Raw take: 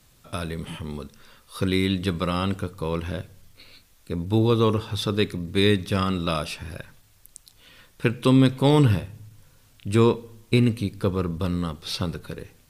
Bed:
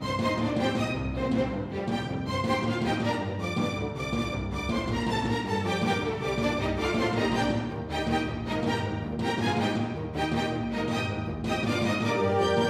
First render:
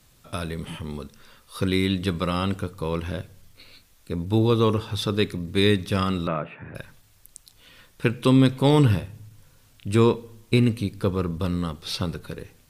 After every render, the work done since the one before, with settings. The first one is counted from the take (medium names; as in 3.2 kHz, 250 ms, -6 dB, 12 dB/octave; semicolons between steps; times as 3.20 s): 6.27–6.75 s: elliptic band-pass 110–2100 Hz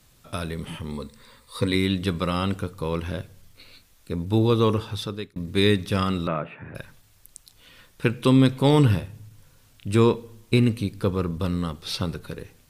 0.91–1.75 s: rippled EQ curve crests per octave 0.98, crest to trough 9 dB; 4.82–5.36 s: fade out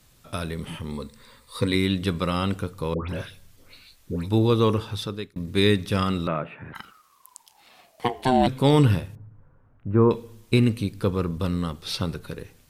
2.94–4.29 s: phase dispersion highs, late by 149 ms, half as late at 1.4 kHz; 6.72–8.46 s: ring modulator 1.5 kHz -> 460 Hz; 9.15–10.11 s: low-pass 1.4 kHz 24 dB/octave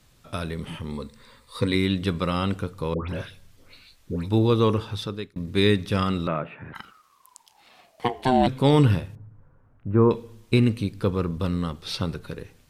treble shelf 8.7 kHz -8 dB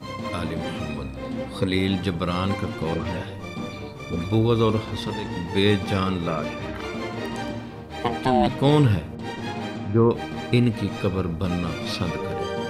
add bed -4 dB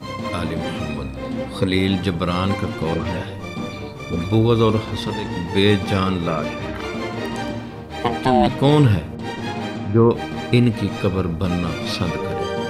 trim +4 dB; peak limiter -3 dBFS, peak gain reduction 1.5 dB